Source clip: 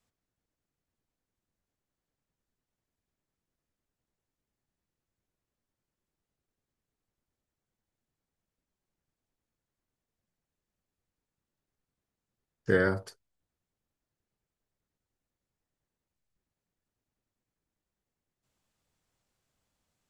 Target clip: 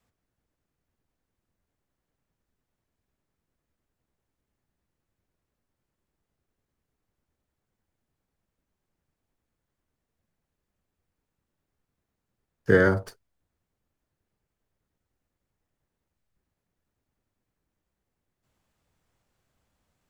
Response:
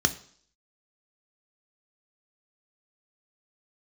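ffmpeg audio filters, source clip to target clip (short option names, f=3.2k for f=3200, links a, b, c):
-filter_complex "[0:a]equalizer=f=69:t=o:w=0.77:g=3.5,acrossover=split=140|460|2600[a][b][c][d];[d]aeval=exprs='max(val(0),0)':c=same[e];[a][b][c][e]amix=inputs=4:normalize=0,volume=6dB"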